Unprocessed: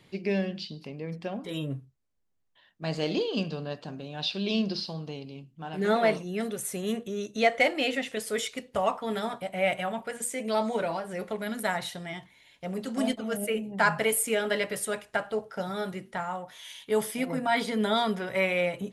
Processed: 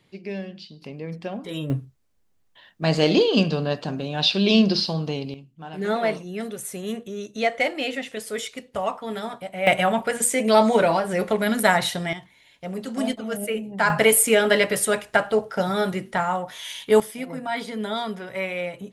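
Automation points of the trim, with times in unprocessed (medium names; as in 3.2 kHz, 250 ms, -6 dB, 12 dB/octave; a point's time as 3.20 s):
-4 dB
from 0.82 s +3 dB
from 1.70 s +10.5 dB
from 5.34 s +0.5 dB
from 9.67 s +11 dB
from 12.13 s +2.5 dB
from 13.90 s +9.5 dB
from 17.00 s -2 dB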